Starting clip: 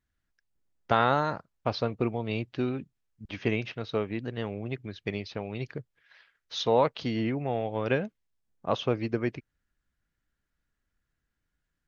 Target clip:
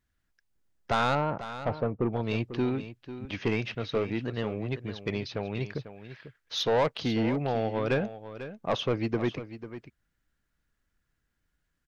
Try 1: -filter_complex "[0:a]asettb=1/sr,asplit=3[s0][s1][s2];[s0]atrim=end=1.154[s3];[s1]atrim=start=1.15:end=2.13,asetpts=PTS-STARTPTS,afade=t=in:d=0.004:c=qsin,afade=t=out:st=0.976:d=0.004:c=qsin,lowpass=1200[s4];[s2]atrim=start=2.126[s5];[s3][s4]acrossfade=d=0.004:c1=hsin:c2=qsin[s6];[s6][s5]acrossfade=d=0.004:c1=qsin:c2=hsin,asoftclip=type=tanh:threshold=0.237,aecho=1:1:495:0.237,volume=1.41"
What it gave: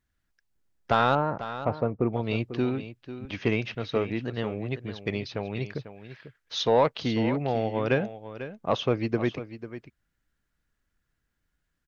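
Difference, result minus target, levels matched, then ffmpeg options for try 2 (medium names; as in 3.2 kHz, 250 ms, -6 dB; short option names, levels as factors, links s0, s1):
saturation: distortion -10 dB
-filter_complex "[0:a]asettb=1/sr,asplit=3[s0][s1][s2];[s0]atrim=end=1.154[s3];[s1]atrim=start=1.15:end=2.13,asetpts=PTS-STARTPTS,afade=t=in:d=0.004:c=qsin,afade=t=out:st=0.976:d=0.004:c=qsin,lowpass=1200[s4];[s2]atrim=start=2.126[s5];[s3][s4]acrossfade=d=0.004:c1=hsin:c2=qsin[s6];[s6][s5]acrossfade=d=0.004:c1=qsin:c2=hsin,asoftclip=type=tanh:threshold=0.0794,aecho=1:1:495:0.237,volume=1.41"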